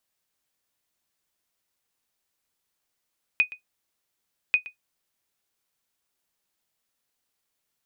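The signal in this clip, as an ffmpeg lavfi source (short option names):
-f lavfi -i "aevalsrc='0.282*(sin(2*PI*2490*mod(t,1.14))*exp(-6.91*mod(t,1.14)/0.12)+0.119*sin(2*PI*2490*max(mod(t,1.14)-0.12,0))*exp(-6.91*max(mod(t,1.14)-0.12,0)/0.12))':d=2.28:s=44100"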